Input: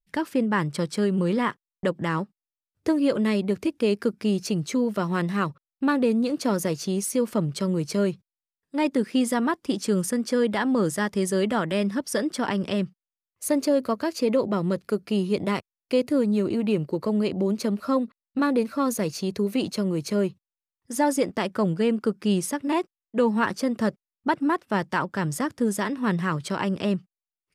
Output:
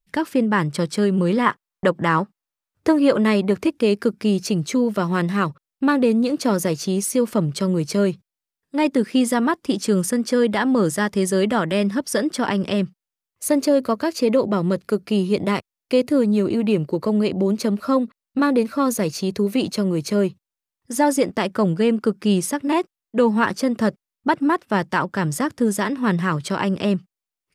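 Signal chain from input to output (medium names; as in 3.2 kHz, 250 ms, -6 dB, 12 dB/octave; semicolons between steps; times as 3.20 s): 1.46–3.71 s: peaking EQ 1.1 kHz +6 dB 1.8 oct; trim +4.5 dB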